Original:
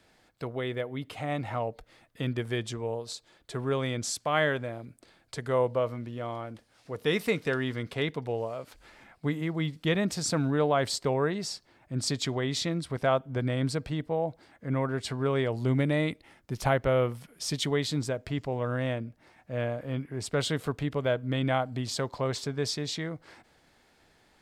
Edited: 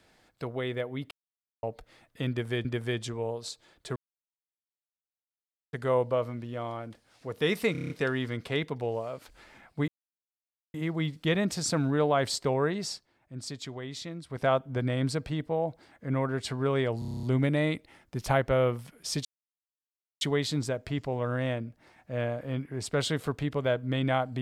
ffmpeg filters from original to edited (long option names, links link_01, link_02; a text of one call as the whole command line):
ffmpeg -i in.wav -filter_complex "[0:a]asplit=24[link_01][link_02][link_03][link_04][link_05][link_06][link_07][link_08][link_09][link_10][link_11][link_12][link_13][link_14][link_15][link_16][link_17][link_18][link_19][link_20][link_21][link_22][link_23][link_24];[link_01]atrim=end=1.11,asetpts=PTS-STARTPTS,afade=type=out:start_time=1.106:duration=0.004:curve=hsin[link_25];[link_02]atrim=start=1.11:end=1.63,asetpts=PTS-STARTPTS,volume=0[link_26];[link_03]atrim=start=1.63:end=2.652,asetpts=PTS-STARTPTS,afade=type=in:duration=0.004:curve=hsin[link_27];[link_04]atrim=start=2.288:end=3.6,asetpts=PTS-STARTPTS,afade=type=out:start_time=1.308:duration=0.004:curve=hsin[link_28];[link_05]atrim=start=3.6:end=5.37,asetpts=PTS-STARTPTS,volume=0[link_29];[link_06]atrim=start=5.37:end=7.392,asetpts=PTS-STARTPTS,afade=type=in:duration=0.004:curve=hsin[link_30];[link_07]atrim=start=7.358:end=7.392[link_31];[link_08]atrim=start=7.358:end=7.392[link_32];[link_09]atrim=start=7.358:end=7.392[link_33];[link_10]atrim=start=7.358:end=7.392[link_34];[link_11]atrim=start=7.358:end=7.392[link_35];[link_12]atrim=start=7.358:end=9.34,asetpts=PTS-STARTPTS,afade=type=out:start_time=1.978:duration=0.004:curve=hsin,apad=pad_dur=0.86[link_36];[link_13]atrim=start=9.34:end=11.66,asetpts=PTS-STARTPTS,afade=type=in:duration=0.004:curve=hsin,afade=type=out:start_time=2.19:duration=0.13:silence=0.354813[link_37];[link_14]atrim=start=11.66:end=12.89,asetpts=PTS-STARTPTS,volume=-9dB[link_38];[link_15]atrim=start=12.89:end=15.622,asetpts=PTS-STARTPTS,afade=type=in:duration=0.13:silence=0.354813[link_39];[link_16]atrim=start=15.588:end=15.622[link_40];[link_17]atrim=start=15.588:end=15.622[link_41];[link_18]atrim=start=15.588:end=15.622[link_42];[link_19]atrim=start=15.588:end=15.622[link_43];[link_20]atrim=start=15.588:end=15.622[link_44];[link_21]atrim=start=15.588:end=15.622[link_45];[link_22]atrim=start=15.588:end=15.622[link_46];[link_23]atrim=start=15.588:end=17.61,asetpts=PTS-STARTPTS,afade=type=out:start_time=2.018:duration=0.004:curve=hsin,apad=pad_dur=0.96[link_47];[link_24]atrim=start=17.61,asetpts=PTS-STARTPTS,afade=type=in:duration=0.004:curve=hsin[link_48];[link_25][link_26][link_27]concat=n=3:v=0:a=1[link_49];[link_28][link_29][link_30]concat=n=3:v=0:a=1[link_50];[link_49][link_50]acrossfade=duration=0.004:curve1=hsin:curve2=hsin[link_51];[link_51][link_31]acrossfade=duration=0.004:curve1=hsin:curve2=hsin[link_52];[link_52][link_32]acrossfade=duration=0.004:curve1=hsin:curve2=hsin[link_53];[link_53][link_33]acrossfade=duration=0.004:curve1=hsin:curve2=hsin[link_54];[link_54][link_34]acrossfade=duration=0.004:curve1=hsin:curve2=hsin[link_55];[link_55][link_35]acrossfade=duration=0.004:curve1=hsin:curve2=hsin[link_56];[link_36][link_37][link_38][link_39]concat=n=4:v=0:a=1[link_57];[link_56][link_57]acrossfade=duration=0.004:curve1=hsin:curve2=hsin[link_58];[link_58][link_40]acrossfade=duration=0.004:curve1=hsin:curve2=hsin[link_59];[link_59][link_41]acrossfade=duration=0.004:curve1=hsin:curve2=hsin[link_60];[link_60][link_42]acrossfade=duration=0.004:curve1=hsin:curve2=hsin[link_61];[link_61][link_43]acrossfade=duration=0.004:curve1=hsin:curve2=hsin[link_62];[link_62][link_44]acrossfade=duration=0.004:curve1=hsin:curve2=hsin[link_63];[link_63][link_45]acrossfade=duration=0.004:curve1=hsin:curve2=hsin[link_64];[link_64][link_46]acrossfade=duration=0.004:curve1=hsin:curve2=hsin[link_65];[link_47][link_48]concat=n=2:v=0:a=1[link_66];[link_65][link_66]acrossfade=duration=0.004:curve1=hsin:curve2=hsin" out.wav